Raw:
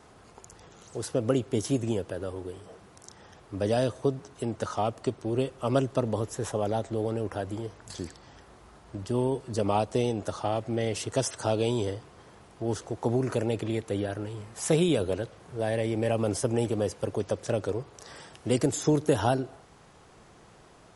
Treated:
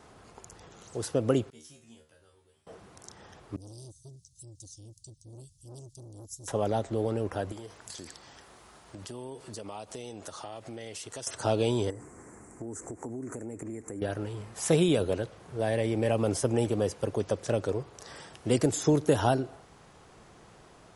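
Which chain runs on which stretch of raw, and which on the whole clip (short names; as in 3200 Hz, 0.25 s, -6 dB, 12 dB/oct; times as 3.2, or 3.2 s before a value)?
1.5–2.67 passive tone stack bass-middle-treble 5-5-5 + resonator 77 Hz, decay 0.29 s, mix 100%
3.56–6.48 inverse Chebyshev band-stop 340–1900 Hz, stop band 60 dB + low shelf 270 Hz -7 dB + core saturation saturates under 1000 Hz
7.52–11.27 tilt +2 dB/oct + compressor 4:1, threshold -39 dBFS
11.9–14.02 EQ curve 170 Hz 0 dB, 260 Hz +9 dB, 590 Hz -2 dB, 2100 Hz +1 dB, 3400 Hz -28 dB, 5000 Hz -10 dB, 7500 Hz +15 dB, 11000 Hz +4 dB + compressor, threshold -36 dBFS
whole clip: dry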